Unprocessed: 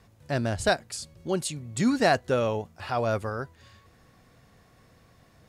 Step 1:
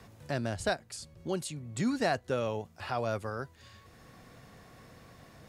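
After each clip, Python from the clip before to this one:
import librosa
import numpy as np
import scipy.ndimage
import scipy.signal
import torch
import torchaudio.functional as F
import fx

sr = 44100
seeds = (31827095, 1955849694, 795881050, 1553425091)

y = fx.band_squash(x, sr, depth_pct=40)
y = F.gain(torch.from_numpy(y), -6.0).numpy()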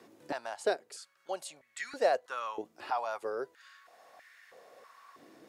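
y = fx.filter_held_highpass(x, sr, hz=3.1, low_hz=320.0, high_hz=1800.0)
y = F.gain(torch.from_numpy(y), -4.5).numpy()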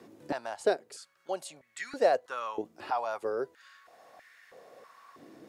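y = fx.low_shelf(x, sr, hz=420.0, db=8.5)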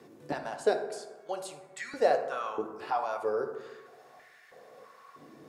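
y = fx.rev_fdn(x, sr, rt60_s=1.3, lf_ratio=1.1, hf_ratio=0.4, size_ms=40.0, drr_db=4.0)
y = F.gain(torch.from_numpy(y), -1.0).numpy()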